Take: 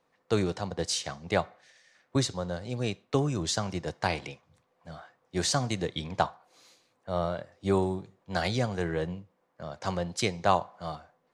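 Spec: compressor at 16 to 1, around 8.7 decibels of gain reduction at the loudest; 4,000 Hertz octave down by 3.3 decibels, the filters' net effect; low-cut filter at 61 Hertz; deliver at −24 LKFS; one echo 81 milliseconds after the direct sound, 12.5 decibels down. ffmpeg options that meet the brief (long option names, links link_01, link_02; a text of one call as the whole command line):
ffmpeg -i in.wav -af "highpass=61,equalizer=frequency=4000:width_type=o:gain=-4,acompressor=threshold=-28dB:ratio=16,aecho=1:1:81:0.237,volume=11.5dB" out.wav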